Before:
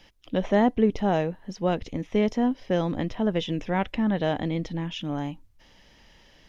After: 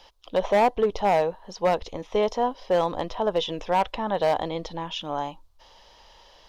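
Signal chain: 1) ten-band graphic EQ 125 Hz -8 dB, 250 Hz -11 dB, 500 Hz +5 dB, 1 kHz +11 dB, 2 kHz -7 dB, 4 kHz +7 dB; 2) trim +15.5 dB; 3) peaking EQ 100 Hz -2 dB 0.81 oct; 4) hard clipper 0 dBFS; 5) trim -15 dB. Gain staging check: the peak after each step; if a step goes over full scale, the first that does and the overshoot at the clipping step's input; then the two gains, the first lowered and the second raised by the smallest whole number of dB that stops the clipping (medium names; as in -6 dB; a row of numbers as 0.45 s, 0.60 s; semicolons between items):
-7.5 dBFS, +8.0 dBFS, +8.0 dBFS, 0.0 dBFS, -15.0 dBFS; step 2, 8.0 dB; step 2 +7.5 dB, step 5 -7 dB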